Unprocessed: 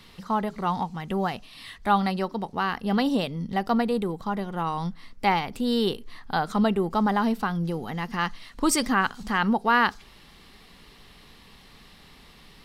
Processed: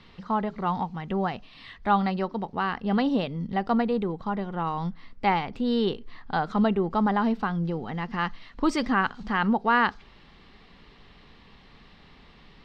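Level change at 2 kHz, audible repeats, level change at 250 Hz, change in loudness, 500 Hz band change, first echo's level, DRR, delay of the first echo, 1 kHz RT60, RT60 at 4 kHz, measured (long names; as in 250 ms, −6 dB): −1.5 dB, no echo audible, 0.0 dB, −1.0 dB, −0.5 dB, no echo audible, no reverb audible, no echo audible, no reverb audible, no reverb audible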